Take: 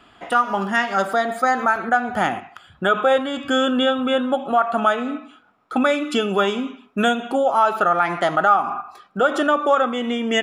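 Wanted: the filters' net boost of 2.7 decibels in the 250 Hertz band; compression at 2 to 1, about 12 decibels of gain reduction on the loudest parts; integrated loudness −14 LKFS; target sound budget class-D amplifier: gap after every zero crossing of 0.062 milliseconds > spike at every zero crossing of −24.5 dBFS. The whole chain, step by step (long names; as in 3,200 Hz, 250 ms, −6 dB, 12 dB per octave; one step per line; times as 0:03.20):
parametric band 250 Hz +3 dB
downward compressor 2 to 1, threshold −35 dBFS
gap after every zero crossing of 0.062 ms
spike at every zero crossing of −24.5 dBFS
level +15.5 dB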